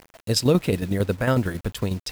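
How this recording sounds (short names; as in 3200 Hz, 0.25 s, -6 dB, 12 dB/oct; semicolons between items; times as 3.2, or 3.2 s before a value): a quantiser's noise floor 8-bit, dither none; tremolo saw down 11 Hz, depth 60%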